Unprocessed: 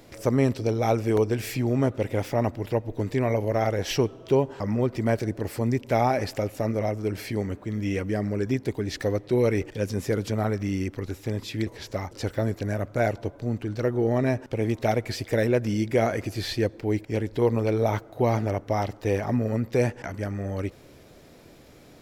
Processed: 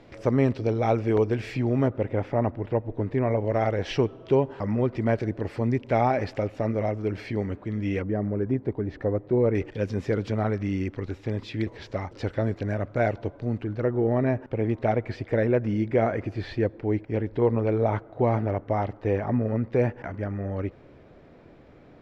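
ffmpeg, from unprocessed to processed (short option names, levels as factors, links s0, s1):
-af "asetnsamples=n=441:p=0,asendcmd='1.88 lowpass f 1800;3.45 lowpass f 3100;8.02 lowpass f 1200;9.55 lowpass f 3300;13.64 lowpass f 2000',lowpass=3200"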